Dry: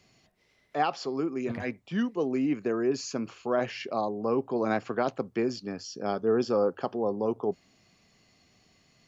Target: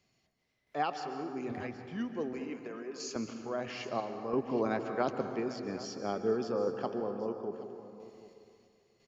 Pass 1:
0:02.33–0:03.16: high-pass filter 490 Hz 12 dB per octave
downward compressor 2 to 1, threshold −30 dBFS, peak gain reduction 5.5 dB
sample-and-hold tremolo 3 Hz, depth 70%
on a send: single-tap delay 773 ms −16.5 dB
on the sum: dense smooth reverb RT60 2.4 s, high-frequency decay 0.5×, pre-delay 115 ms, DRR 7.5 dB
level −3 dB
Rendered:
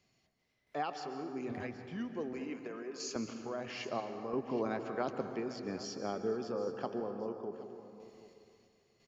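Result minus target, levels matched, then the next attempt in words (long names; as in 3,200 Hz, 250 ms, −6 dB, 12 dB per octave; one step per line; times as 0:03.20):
downward compressor: peak gain reduction +5.5 dB
0:02.33–0:03.16: high-pass filter 490 Hz 12 dB per octave
sample-and-hold tremolo 3 Hz, depth 70%
on a send: single-tap delay 773 ms −16.5 dB
on the sum: dense smooth reverb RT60 2.4 s, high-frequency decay 0.5×, pre-delay 115 ms, DRR 7.5 dB
level −3 dB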